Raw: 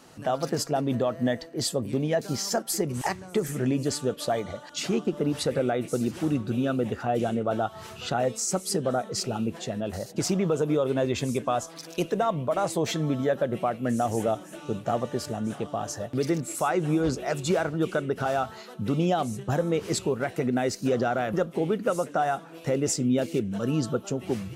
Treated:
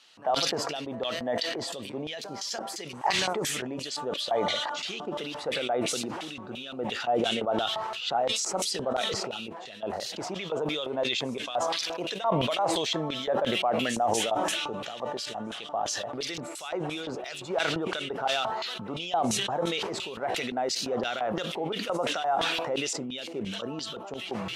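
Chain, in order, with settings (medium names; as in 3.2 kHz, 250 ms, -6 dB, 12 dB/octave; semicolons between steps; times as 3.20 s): dynamic bell 1.3 kHz, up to -5 dB, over -40 dBFS, Q 0.94; LFO band-pass square 2.9 Hz 900–3400 Hz; decay stretcher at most 23 dB/s; trim +6 dB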